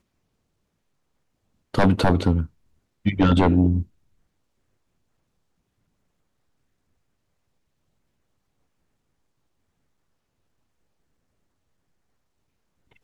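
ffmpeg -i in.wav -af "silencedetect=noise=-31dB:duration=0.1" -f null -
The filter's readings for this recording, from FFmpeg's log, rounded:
silence_start: 0.00
silence_end: 1.74 | silence_duration: 1.74
silence_start: 2.45
silence_end: 3.06 | silence_duration: 0.61
silence_start: 3.83
silence_end: 13.04 | silence_duration: 9.21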